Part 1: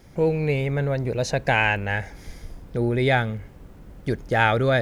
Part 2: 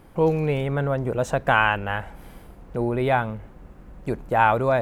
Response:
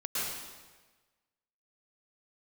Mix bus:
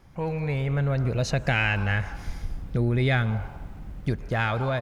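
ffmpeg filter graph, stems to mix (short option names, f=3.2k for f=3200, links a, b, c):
-filter_complex "[0:a]equalizer=f=630:t=o:w=1.9:g=-14,dynaudnorm=f=220:g=7:m=10dB,volume=-2dB[a];[1:a]highpass=690,asoftclip=type=tanh:threshold=-17.5dB,adelay=0.6,volume=-6.5dB,asplit=2[b][c];[c]volume=-10.5dB[d];[2:a]atrim=start_sample=2205[e];[d][e]afir=irnorm=-1:irlink=0[f];[a][b][f]amix=inputs=3:normalize=0,highshelf=f=3.9k:g=-10,acompressor=threshold=-22dB:ratio=2"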